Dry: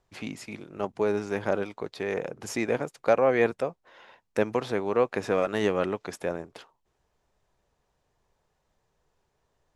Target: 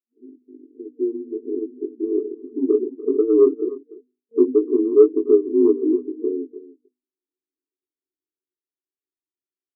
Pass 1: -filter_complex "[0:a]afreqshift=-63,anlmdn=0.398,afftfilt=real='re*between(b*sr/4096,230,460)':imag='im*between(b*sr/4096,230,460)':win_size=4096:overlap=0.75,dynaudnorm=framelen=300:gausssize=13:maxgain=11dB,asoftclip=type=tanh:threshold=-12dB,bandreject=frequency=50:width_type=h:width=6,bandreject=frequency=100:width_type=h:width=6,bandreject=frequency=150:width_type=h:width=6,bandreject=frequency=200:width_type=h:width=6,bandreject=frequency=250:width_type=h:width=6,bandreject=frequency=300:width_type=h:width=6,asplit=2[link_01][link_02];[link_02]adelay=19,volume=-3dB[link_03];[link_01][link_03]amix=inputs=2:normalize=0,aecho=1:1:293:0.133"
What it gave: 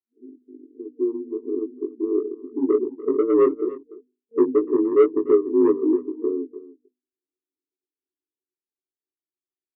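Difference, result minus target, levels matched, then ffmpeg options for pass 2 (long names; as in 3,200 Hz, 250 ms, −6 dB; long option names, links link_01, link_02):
soft clipping: distortion +14 dB
-filter_complex "[0:a]afreqshift=-63,anlmdn=0.398,afftfilt=real='re*between(b*sr/4096,230,460)':imag='im*between(b*sr/4096,230,460)':win_size=4096:overlap=0.75,dynaudnorm=framelen=300:gausssize=13:maxgain=11dB,asoftclip=type=tanh:threshold=-2.5dB,bandreject=frequency=50:width_type=h:width=6,bandreject=frequency=100:width_type=h:width=6,bandreject=frequency=150:width_type=h:width=6,bandreject=frequency=200:width_type=h:width=6,bandreject=frequency=250:width_type=h:width=6,bandreject=frequency=300:width_type=h:width=6,asplit=2[link_01][link_02];[link_02]adelay=19,volume=-3dB[link_03];[link_01][link_03]amix=inputs=2:normalize=0,aecho=1:1:293:0.133"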